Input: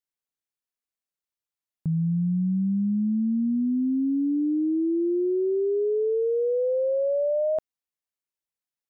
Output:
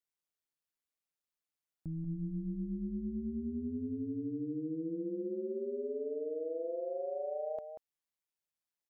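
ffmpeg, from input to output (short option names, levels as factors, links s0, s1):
-filter_complex "[0:a]alimiter=level_in=2.51:limit=0.0631:level=0:latency=1,volume=0.398,tremolo=f=160:d=0.667,asplit=2[s0][s1];[s1]adelay=186.6,volume=0.398,highshelf=f=4000:g=-4.2[s2];[s0][s2]amix=inputs=2:normalize=0"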